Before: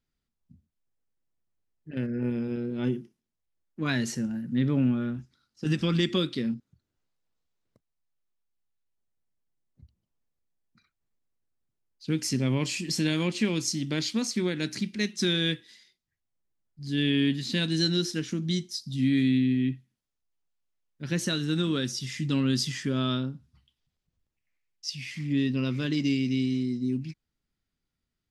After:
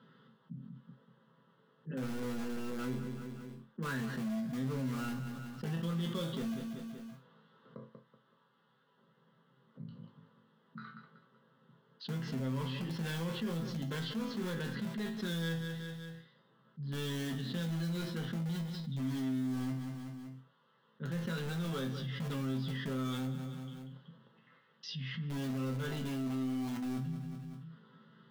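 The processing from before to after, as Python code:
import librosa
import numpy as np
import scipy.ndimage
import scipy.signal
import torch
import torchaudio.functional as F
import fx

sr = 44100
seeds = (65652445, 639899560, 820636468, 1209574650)

p1 = scipy.signal.sosfilt(scipy.signal.cheby1(4, 1.0, [130.0, 3300.0], 'bandpass', fs=sr, output='sos'), x)
p2 = fx.fixed_phaser(p1, sr, hz=470.0, stages=8)
p3 = (np.mod(10.0 ** (30.5 / 20.0) * p2 + 1.0, 2.0) - 1.0) / 10.0 ** (30.5 / 20.0)
p4 = p2 + F.gain(torch.from_numpy(p3), -10.0).numpy()
p5 = fx.resonator_bank(p4, sr, root=45, chord='minor', decay_s=0.28)
p6 = fx.echo_feedback(p5, sr, ms=189, feedback_pct=31, wet_db=-15.5)
p7 = fx.env_flatten(p6, sr, amount_pct=70)
y = F.gain(torch.from_numpy(p7), 2.0).numpy()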